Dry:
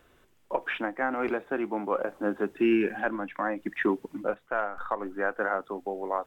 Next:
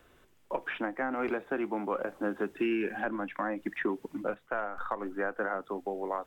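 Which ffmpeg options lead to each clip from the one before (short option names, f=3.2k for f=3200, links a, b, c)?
-filter_complex "[0:a]acrossover=split=340|1300[a][b][c];[a]acompressor=threshold=-34dB:ratio=4[d];[b]acompressor=threshold=-33dB:ratio=4[e];[c]acompressor=threshold=-37dB:ratio=4[f];[d][e][f]amix=inputs=3:normalize=0"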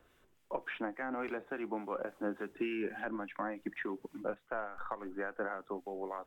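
-filter_complex "[0:a]acrossover=split=1400[a][b];[a]aeval=exprs='val(0)*(1-0.5/2+0.5/2*cos(2*PI*3.5*n/s))':c=same[c];[b]aeval=exprs='val(0)*(1-0.5/2-0.5/2*cos(2*PI*3.5*n/s))':c=same[d];[c][d]amix=inputs=2:normalize=0,volume=-3.5dB"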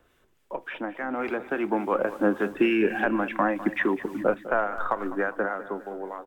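-af "dynaudnorm=f=310:g=9:m=11dB,aecho=1:1:203|406|609|812:0.178|0.0854|0.041|0.0197,volume=3dB"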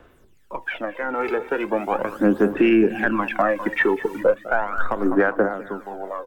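-af "aphaser=in_gain=1:out_gain=1:delay=2.3:decay=0.67:speed=0.38:type=sinusoidal,aeval=exprs='0.944*(cos(1*acos(clip(val(0)/0.944,-1,1)))-cos(1*PI/2))+0.015*(cos(6*acos(clip(val(0)/0.944,-1,1)))-cos(6*PI/2))':c=same,alimiter=limit=-11dB:level=0:latency=1:release=271,volume=3.5dB"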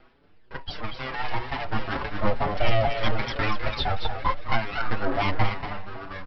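-filter_complex "[0:a]aresample=11025,aeval=exprs='abs(val(0))':c=same,aresample=44100,aecho=1:1:236:0.473,asplit=2[a][b];[b]adelay=5.9,afreqshift=2.2[c];[a][c]amix=inputs=2:normalize=1"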